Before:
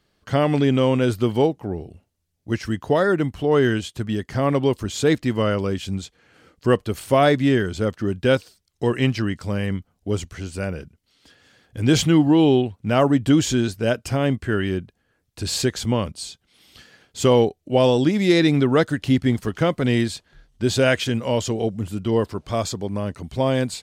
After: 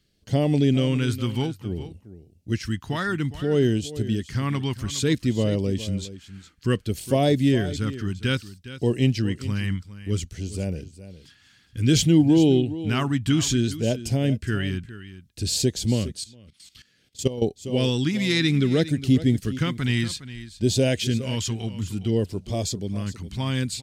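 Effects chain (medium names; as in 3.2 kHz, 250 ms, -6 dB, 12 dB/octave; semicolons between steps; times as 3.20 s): phase shifter stages 2, 0.59 Hz, lowest notch 510–1300 Hz; delay 411 ms -14.5 dB; 16.21–17.42 s: level held to a coarse grid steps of 16 dB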